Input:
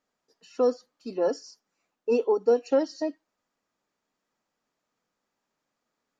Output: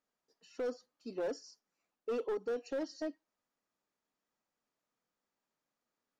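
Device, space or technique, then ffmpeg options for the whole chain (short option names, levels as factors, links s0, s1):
limiter into clipper: -af "alimiter=limit=0.126:level=0:latency=1:release=56,asoftclip=type=hard:threshold=0.0668,volume=0.398"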